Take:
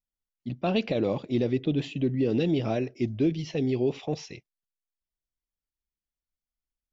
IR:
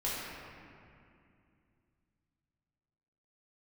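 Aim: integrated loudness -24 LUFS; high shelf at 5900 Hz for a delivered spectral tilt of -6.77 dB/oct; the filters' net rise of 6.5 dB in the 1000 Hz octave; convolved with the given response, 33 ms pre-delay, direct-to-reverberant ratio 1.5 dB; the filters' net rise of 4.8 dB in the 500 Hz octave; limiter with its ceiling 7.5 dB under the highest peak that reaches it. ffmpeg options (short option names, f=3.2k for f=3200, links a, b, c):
-filter_complex "[0:a]equalizer=f=500:t=o:g=4.5,equalizer=f=1k:t=o:g=7.5,highshelf=f=5.9k:g=6.5,alimiter=limit=-19dB:level=0:latency=1,asplit=2[a][b];[1:a]atrim=start_sample=2205,adelay=33[c];[b][c]afir=irnorm=-1:irlink=0,volume=-7.5dB[d];[a][d]amix=inputs=2:normalize=0,volume=2.5dB"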